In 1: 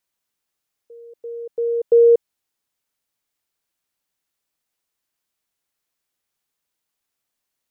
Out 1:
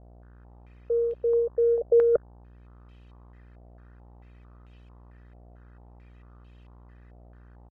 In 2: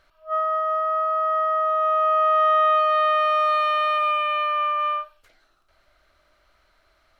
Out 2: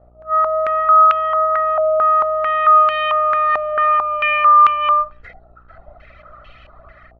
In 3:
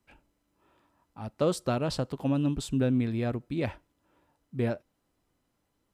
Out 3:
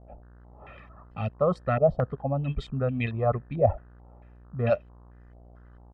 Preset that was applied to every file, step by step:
low shelf 320 Hz +10.5 dB; AGC gain up to 14 dB; reverb removal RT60 1.5 s; reverse; compressor 6:1, threshold -24 dBFS; reverse; low shelf 150 Hz -7 dB; comb 1.6 ms, depth 84%; buzz 60 Hz, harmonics 30, -51 dBFS -8 dB/oct; stepped low-pass 4.5 Hz 700–2800 Hz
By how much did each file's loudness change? -7.5, +6.5, +2.5 LU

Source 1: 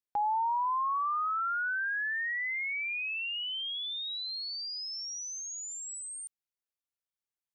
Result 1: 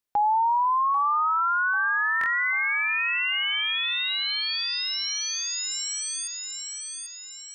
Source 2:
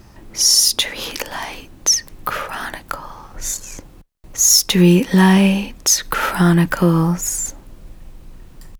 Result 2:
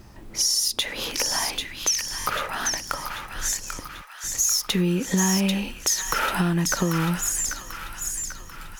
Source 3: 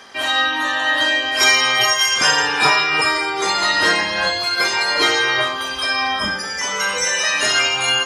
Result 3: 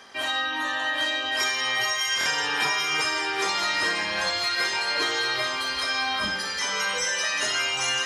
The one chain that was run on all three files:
compressor, threshold -17 dBFS; thin delay 0.791 s, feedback 49%, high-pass 1400 Hz, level -4 dB; stuck buffer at 2.19, samples 1024, times 2; match loudness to -24 LUFS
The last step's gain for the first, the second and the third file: +7.5, -3.0, -6.0 dB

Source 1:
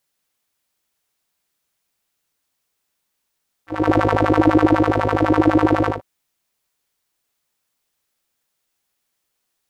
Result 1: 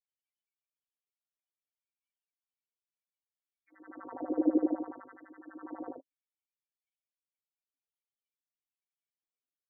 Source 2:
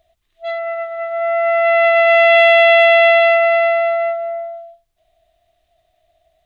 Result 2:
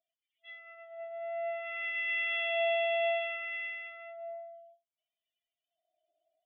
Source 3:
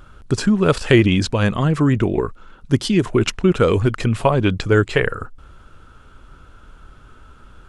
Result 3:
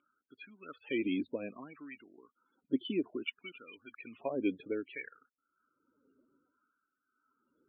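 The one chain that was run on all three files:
loudest bins only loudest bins 32; vocal tract filter i; LFO high-pass sine 0.61 Hz 520–1900 Hz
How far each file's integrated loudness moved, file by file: -16.0, -20.5, -19.5 LU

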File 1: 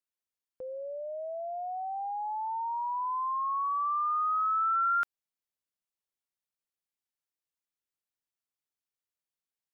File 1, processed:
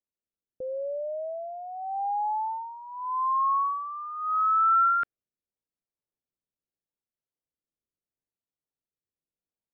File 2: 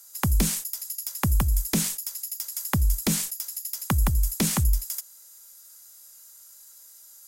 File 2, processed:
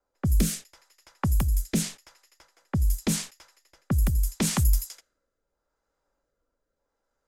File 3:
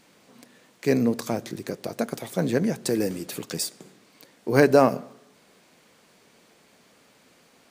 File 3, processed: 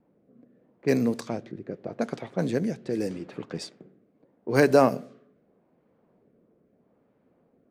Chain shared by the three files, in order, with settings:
rotary speaker horn 0.8 Hz; low-pass opened by the level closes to 620 Hz, open at -21 dBFS; match loudness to -27 LUFS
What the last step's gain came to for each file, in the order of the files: +7.0, +2.0, -1.0 dB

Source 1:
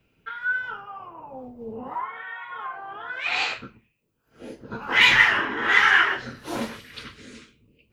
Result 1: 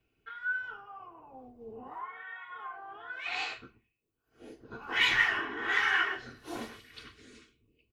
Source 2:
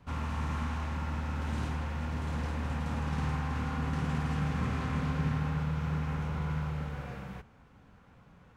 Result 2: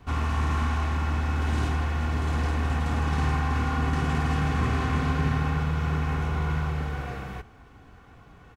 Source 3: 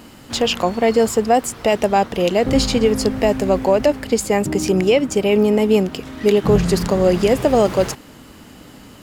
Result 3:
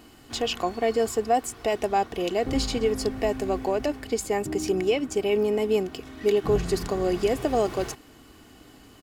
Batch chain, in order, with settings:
comb 2.7 ms, depth 47%; normalise peaks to -12 dBFS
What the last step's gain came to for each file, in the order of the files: -10.5, +7.0, -9.5 dB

